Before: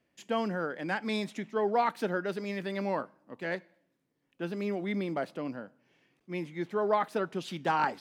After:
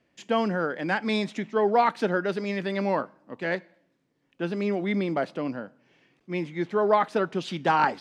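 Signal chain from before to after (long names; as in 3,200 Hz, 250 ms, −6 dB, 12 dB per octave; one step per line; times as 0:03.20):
low-pass filter 6,900 Hz 12 dB per octave
level +6 dB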